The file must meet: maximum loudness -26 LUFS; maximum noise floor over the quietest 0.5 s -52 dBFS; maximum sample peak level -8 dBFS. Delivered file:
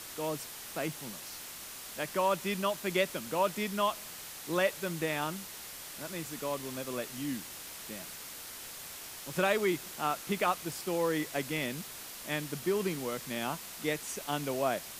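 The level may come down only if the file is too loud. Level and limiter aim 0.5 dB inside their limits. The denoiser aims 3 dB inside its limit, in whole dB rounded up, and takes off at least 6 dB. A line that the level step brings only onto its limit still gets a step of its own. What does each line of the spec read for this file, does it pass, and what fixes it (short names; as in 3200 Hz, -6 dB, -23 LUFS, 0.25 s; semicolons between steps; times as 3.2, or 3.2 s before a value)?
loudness -34.5 LUFS: OK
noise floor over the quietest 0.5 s -45 dBFS: fail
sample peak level -13.0 dBFS: OK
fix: denoiser 10 dB, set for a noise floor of -45 dBFS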